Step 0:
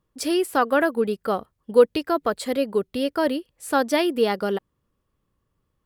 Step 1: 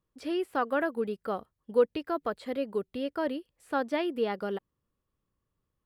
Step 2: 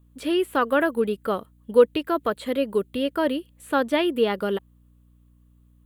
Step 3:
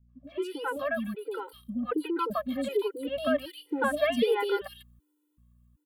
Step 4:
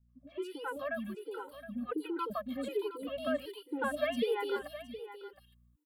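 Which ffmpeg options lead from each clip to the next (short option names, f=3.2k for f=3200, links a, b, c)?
-filter_complex "[0:a]acrossover=split=3600[a][b];[b]acompressor=threshold=-51dB:ratio=4:attack=1:release=60[c];[a][c]amix=inputs=2:normalize=0,volume=-8.5dB"
-af "equalizer=f=750:w=7.7:g=-7.5,aeval=exprs='val(0)+0.000708*(sin(2*PI*60*n/s)+sin(2*PI*2*60*n/s)/2+sin(2*PI*3*60*n/s)/3+sin(2*PI*4*60*n/s)/4+sin(2*PI*5*60*n/s)/5)':c=same,aexciter=amount=1.6:drive=1.3:freq=2.8k,volume=8dB"
-filter_complex "[0:a]dynaudnorm=f=260:g=11:m=11.5dB,acrossover=split=480|2800[a][b][c];[b]adelay=90[d];[c]adelay=240[e];[a][d][e]amix=inputs=3:normalize=0,afftfilt=real='re*gt(sin(2*PI*1.3*pts/sr)*(1-2*mod(floor(b*sr/1024/260),2)),0)':imag='im*gt(sin(2*PI*1.3*pts/sr)*(1-2*mod(floor(b*sr/1024/260),2)),0)':win_size=1024:overlap=0.75,volume=-5dB"
-af "aecho=1:1:717:0.224,volume=-6.5dB"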